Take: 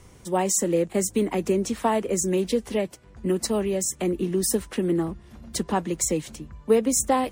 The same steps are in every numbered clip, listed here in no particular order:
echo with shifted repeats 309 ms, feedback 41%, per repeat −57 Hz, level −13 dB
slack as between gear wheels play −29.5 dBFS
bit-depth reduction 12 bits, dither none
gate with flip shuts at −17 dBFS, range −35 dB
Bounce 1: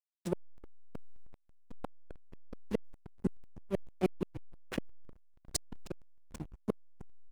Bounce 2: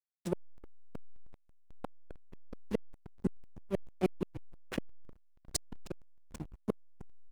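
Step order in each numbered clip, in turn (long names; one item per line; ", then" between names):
bit-depth reduction, then gate with flip, then echo with shifted repeats, then slack as between gear wheels
gate with flip, then echo with shifted repeats, then slack as between gear wheels, then bit-depth reduction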